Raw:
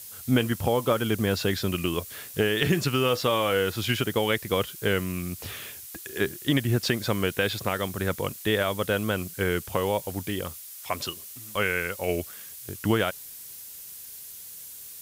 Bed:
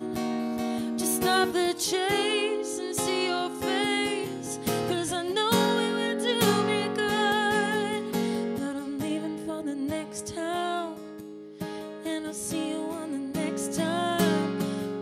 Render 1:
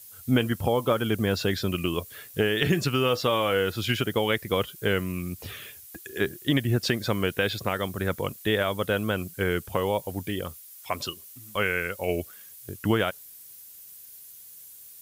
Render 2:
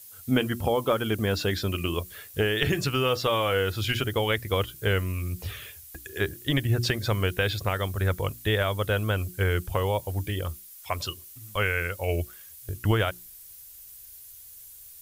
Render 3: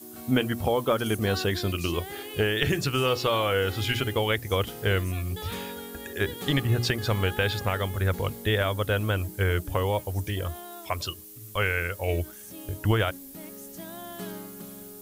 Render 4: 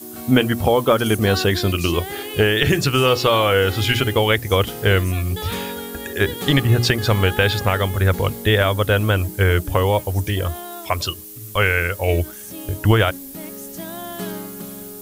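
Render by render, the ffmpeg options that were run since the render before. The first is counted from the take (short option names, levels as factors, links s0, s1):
-af "afftdn=nr=8:nf=-43"
-af "bandreject=f=60:t=h:w=6,bandreject=f=120:t=h:w=6,bandreject=f=180:t=h:w=6,bandreject=f=240:t=h:w=6,bandreject=f=300:t=h:w=6,bandreject=f=360:t=h:w=6,asubboost=boost=9:cutoff=67"
-filter_complex "[1:a]volume=0.2[s0];[0:a][s0]amix=inputs=2:normalize=0"
-af "volume=2.66,alimiter=limit=0.891:level=0:latency=1"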